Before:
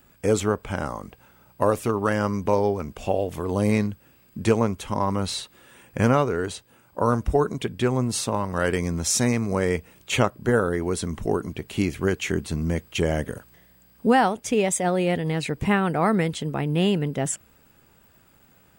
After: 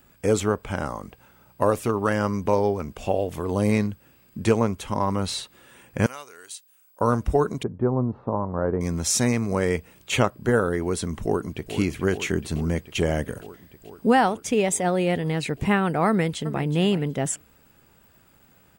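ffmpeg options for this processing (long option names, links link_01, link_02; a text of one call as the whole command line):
ffmpeg -i in.wav -filter_complex "[0:a]asettb=1/sr,asplit=3[link_01][link_02][link_03];[link_01]atrim=end=6.064[link_04];[link_02]atrim=start=6.06:end=7.01,asetpts=PTS-STARTPTS,afade=type=in:duration=0.004:curve=qsin,afade=type=out:start_time=0.946:duration=0.004:curve=qsin,aderivative[link_05];[link_03]atrim=start=7.006[link_06];[link_04][link_05]acrossfade=duration=0.004:curve1=hsin:curve2=qsin[link_07];[link_07][link_06]acrossfade=duration=0.004:curve1=qsin:curve2=hsin,asettb=1/sr,asplit=3[link_08][link_09][link_10];[link_08]atrim=end=7.634[link_11];[link_09]atrim=start=7.63:end=8.81,asetpts=PTS-STARTPTS,afade=type=in:duration=0.004:curve=qsin,afade=type=out:start_time=1.176:duration=0.004:curve=qsin,lowpass=frequency=1100:width=0.5412,lowpass=frequency=1100:width=1.3066[link_12];[link_10]atrim=start=8.806[link_13];[link_11][link_12]acrossfade=duration=0.004:curve1=hsin:curve2=qsin[link_14];[link_14][link_13]acrossfade=duration=0.004:curve1=qsin:curve2=hsin,asplit=2[link_15][link_16];[link_16]afade=type=in:start_time=11.23:duration=0.01,afade=type=out:start_time=11.74:duration=0.01,aecho=0:1:430|860|1290|1720|2150|2580|3010|3440|3870|4300|4730|5160:0.298538|0.238831|0.191064|0.152852|0.122281|0.097825|0.07826|0.062608|0.0500864|0.0400691|0.0320553|0.0256442[link_17];[link_15][link_17]amix=inputs=2:normalize=0,asplit=2[link_18][link_19];[link_19]afade=type=in:start_time=16.08:duration=0.01,afade=type=out:start_time=16.68:duration=0.01,aecho=0:1:370|740:0.188365|0.0282547[link_20];[link_18][link_20]amix=inputs=2:normalize=0" out.wav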